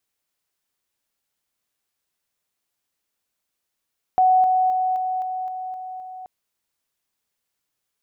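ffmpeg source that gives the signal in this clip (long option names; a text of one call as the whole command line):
ffmpeg -f lavfi -i "aevalsrc='pow(10,(-12.5-3*floor(t/0.26))/20)*sin(2*PI*744*t)':duration=2.08:sample_rate=44100" out.wav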